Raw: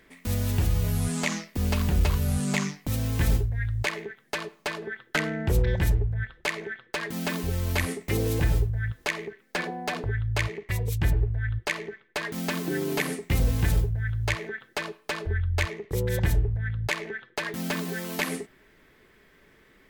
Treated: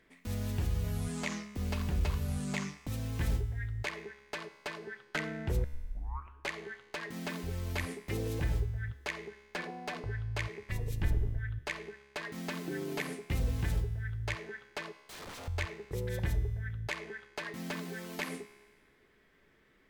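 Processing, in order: 10.59–11.39 s: octave divider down 2 oct, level -2 dB; 15.02–15.48 s: integer overflow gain 32 dB; treble shelf 9.8 kHz -7.5 dB; 5.64 s: tape start 0.86 s; feedback comb 69 Hz, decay 1.5 s, harmonics all, mix 60%; trim -1.5 dB

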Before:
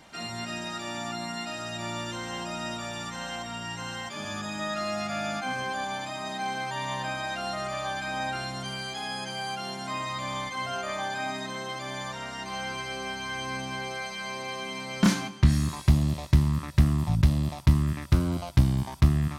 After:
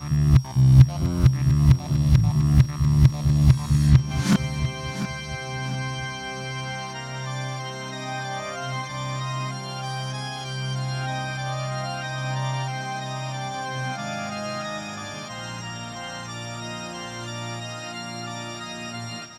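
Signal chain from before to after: reverse the whole clip; peaking EQ 130 Hz +12.5 dB 0.36 oct; on a send: feedback delay 695 ms, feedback 38%, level -11 dB; on the sum: whistle 5.6 kHz -44 dBFS

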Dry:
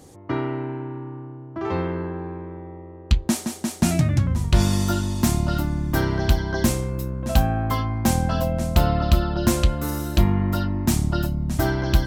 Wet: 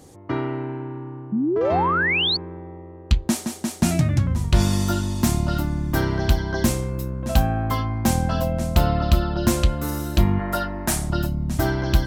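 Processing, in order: 1.32–2.37 s: painted sound rise 200–4600 Hz -21 dBFS; 10.39–11.10 s: fifteen-band graphic EQ 100 Hz -12 dB, 250 Hz -8 dB, 630 Hz +8 dB, 1.6 kHz +8 dB, 10 kHz +7 dB

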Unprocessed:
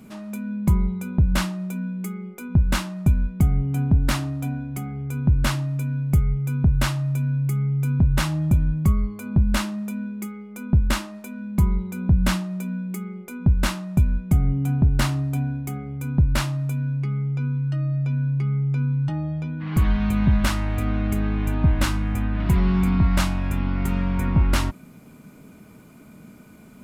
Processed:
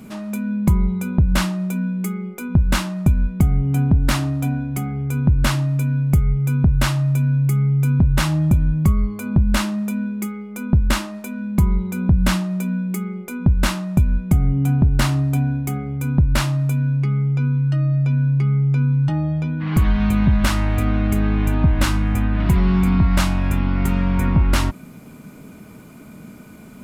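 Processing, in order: compression 2:1, threshold -20 dBFS, peak gain reduction 4.5 dB; trim +6 dB

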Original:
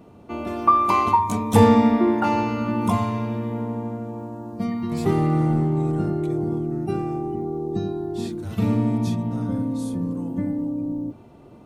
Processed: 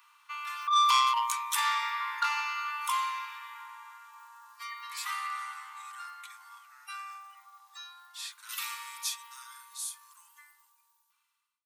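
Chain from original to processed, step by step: fade out at the end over 3.66 s; tilt EQ +4 dB/octave; compressor with a negative ratio -17 dBFS, ratio -0.5; steep high-pass 1 kHz 72 dB/octave; treble shelf 4.1 kHz -11 dB, from 8.49 s +2 dB; transformer saturation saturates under 3.6 kHz

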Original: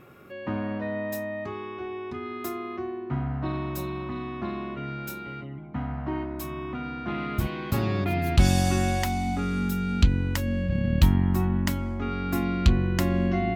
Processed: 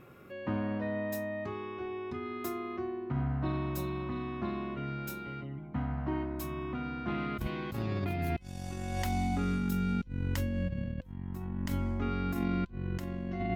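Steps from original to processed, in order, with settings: bass shelf 320 Hz +3 dB; compressor with a negative ratio -25 dBFS, ratio -0.5; feedback comb 510 Hz, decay 0.24 s, harmonics all, mix 60%

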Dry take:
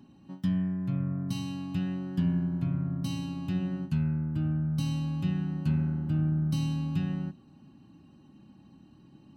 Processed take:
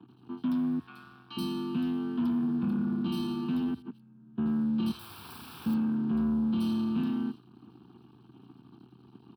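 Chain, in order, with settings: 0.79–1.37 s: high-pass 900 Hz 12 dB/octave; dynamic bell 1.6 kHz, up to +4 dB, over -58 dBFS, Q 1.2; waveshaping leveller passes 3; 3.74–4.38 s: compressor with a negative ratio -37 dBFS, ratio -0.5; hum 60 Hz, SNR 31 dB; 4.91–5.66 s: integer overflow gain 32.5 dB; static phaser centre 1.9 kHz, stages 6; frequency shift +67 Hz; bands offset in time lows, highs 80 ms, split 3.4 kHz; trim -5.5 dB

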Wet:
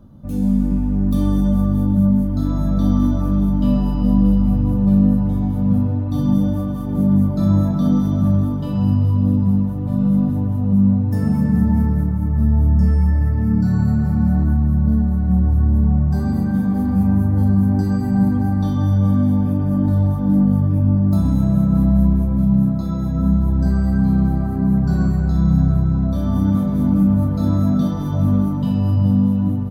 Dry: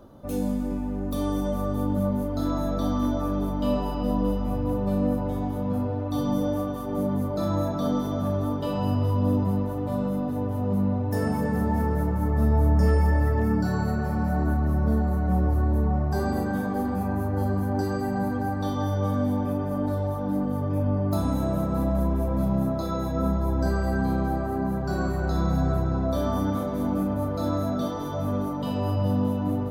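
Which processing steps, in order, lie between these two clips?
resonant low shelf 280 Hz +12 dB, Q 1.5; level rider; delay 127 ms -14.5 dB; trim -5 dB

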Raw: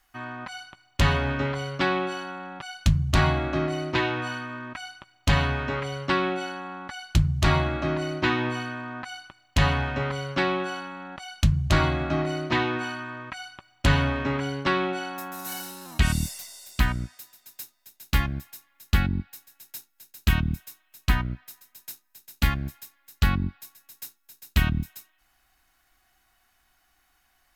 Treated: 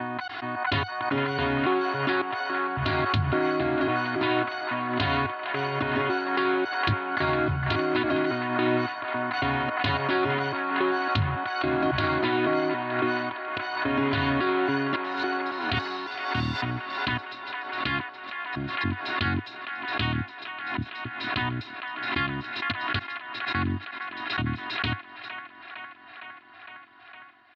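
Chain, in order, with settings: slices played last to first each 277 ms, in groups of 2; Chebyshev band-pass 100–4200 Hz, order 4; comb 2.9 ms, depth 86%; in parallel at -2.5 dB: compression, threshold -34 dBFS, peak gain reduction 16.5 dB; on the sum: peak limiter -16.5 dBFS, peak gain reduction 10 dB; feedback echo behind a band-pass 459 ms, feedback 77%, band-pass 1.3 kHz, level -5.5 dB; level-controlled noise filter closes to 3 kHz, open at -21.5 dBFS; swell ahead of each attack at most 46 dB/s

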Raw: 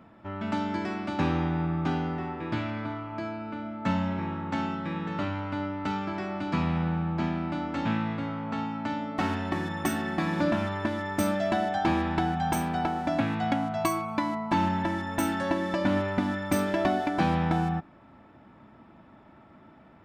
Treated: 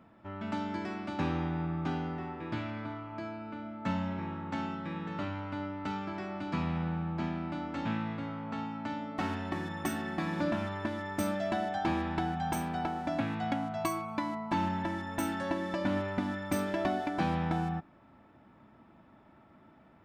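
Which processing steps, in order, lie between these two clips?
trim -5.5 dB

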